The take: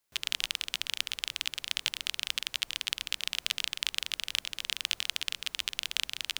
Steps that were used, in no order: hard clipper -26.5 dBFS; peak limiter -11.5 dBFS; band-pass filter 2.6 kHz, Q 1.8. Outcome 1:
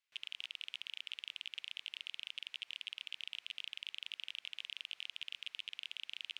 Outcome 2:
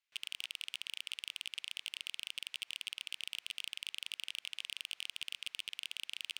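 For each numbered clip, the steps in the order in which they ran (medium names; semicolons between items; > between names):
peak limiter > hard clipper > band-pass filter; peak limiter > band-pass filter > hard clipper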